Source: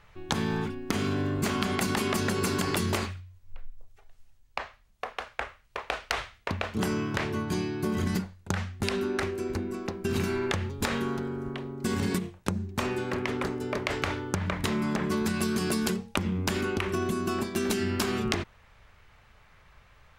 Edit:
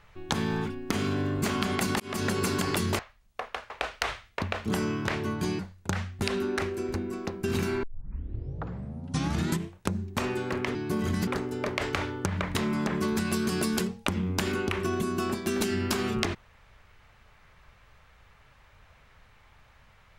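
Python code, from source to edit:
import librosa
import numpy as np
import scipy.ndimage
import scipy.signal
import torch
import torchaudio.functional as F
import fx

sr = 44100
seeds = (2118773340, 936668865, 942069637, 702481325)

y = fx.edit(x, sr, fx.fade_in_span(start_s=2.0, length_s=0.25),
    fx.cut(start_s=2.99, length_s=1.64),
    fx.cut(start_s=5.34, length_s=0.45),
    fx.move(start_s=7.68, length_s=0.52, to_s=13.36),
    fx.tape_start(start_s=10.44, length_s=1.91), tone=tone)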